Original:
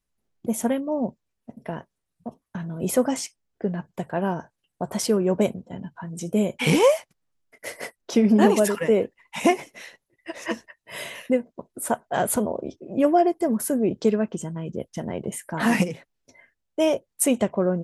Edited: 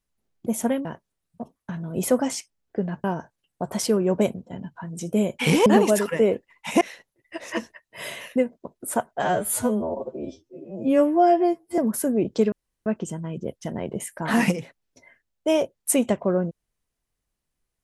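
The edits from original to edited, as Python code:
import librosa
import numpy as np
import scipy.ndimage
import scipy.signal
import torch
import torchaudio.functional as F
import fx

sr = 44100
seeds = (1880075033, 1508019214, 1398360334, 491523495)

y = fx.edit(x, sr, fx.cut(start_s=0.85, length_s=0.86),
    fx.cut(start_s=3.9, length_s=0.34),
    fx.cut(start_s=6.86, length_s=1.49),
    fx.cut(start_s=9.5, length_s=0.25),
    fx.stretch_span(start_s=12.16, length_s=1.28, factor=2.0),
    fx.insert_room_tone(at_s=14.18, length_s=0.34), tone=tone)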